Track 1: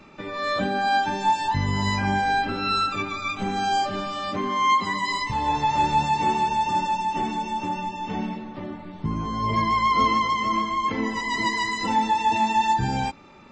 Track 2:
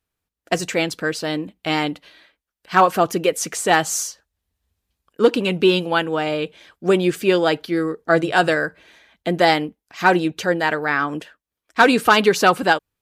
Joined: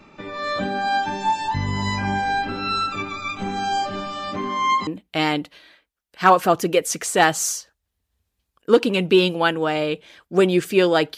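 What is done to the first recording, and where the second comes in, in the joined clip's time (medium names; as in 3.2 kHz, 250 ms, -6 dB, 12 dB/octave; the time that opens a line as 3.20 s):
track 1
4.87 s: go over to track 2 from 1.38 s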